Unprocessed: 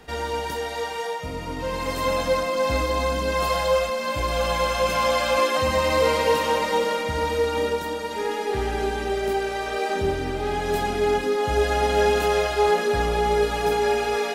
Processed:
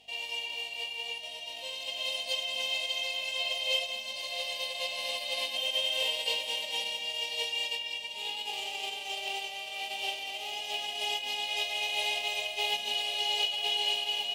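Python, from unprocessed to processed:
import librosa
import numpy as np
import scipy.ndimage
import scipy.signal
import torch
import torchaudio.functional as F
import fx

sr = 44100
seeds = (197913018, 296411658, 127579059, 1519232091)

y = fx.envelope_flatten(x, sr, power=0.1)
y = fx.add_hum(y, sr, base_hz=50, snr_db=21)
y = fx.double_bandpass(y, sr, hz=1400.0, octaves=2.1)
y = F.gain(torch.from_numpy(y), 2.0).numpy()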